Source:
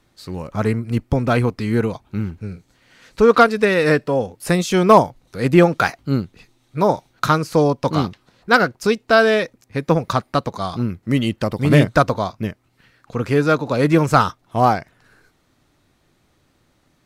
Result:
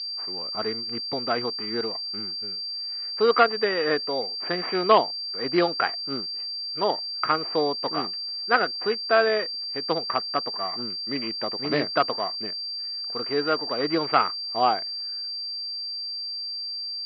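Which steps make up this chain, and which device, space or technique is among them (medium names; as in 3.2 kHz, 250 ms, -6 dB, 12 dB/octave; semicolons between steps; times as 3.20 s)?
toy sound module (decimation joined by straight lines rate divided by 8×; class-D stage that switches slowly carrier 4.7 kHz; cabinet simulation 540–4100 Hz, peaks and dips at 560 Hz -8 dB, 930 Hz -7 dB, 1.5 kHz -4 dB)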